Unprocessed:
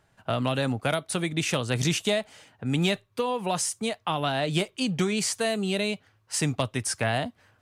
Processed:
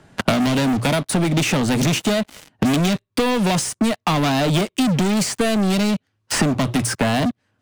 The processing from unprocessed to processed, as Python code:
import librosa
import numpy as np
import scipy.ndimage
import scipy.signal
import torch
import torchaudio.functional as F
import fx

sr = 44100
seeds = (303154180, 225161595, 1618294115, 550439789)

y = scipy.signal.sosfilt(scipy.signal.butter(2, 11000.0, 'lowpass', fs=sr, output='sos'), x)
y = fx.peak_eq(y, sr, hz=240.0, db=10.5, octaves=1.4)
y = fx.hum_notches(y, sr, base_hz=60, count=2)
y = fx.leveller(y, sr, passes=5)
y = fx.band_squash(y, sr, depth_pct=100)
y = y * librosa.db_to_amplitude(-7.5)